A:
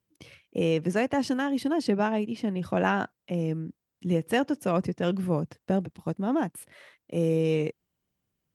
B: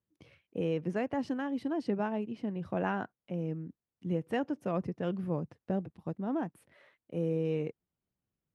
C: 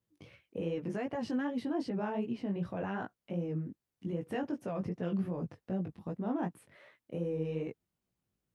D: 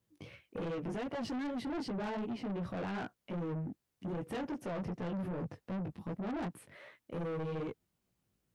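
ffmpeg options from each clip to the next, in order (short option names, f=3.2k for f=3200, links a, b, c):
-af "lowpass=f=1.7k:p=1,volume=-6.5dB"
-af "alimiter=level_in=6dB:limit=-24dB:level=0:latency=1:release=14,volume=-6dB,flanger=delay=16:depth=4.5:speed=2.6,volume=6dB"
-af "asoftclip=type=tanh:threshold=-39.5dB,volume=4.5dB"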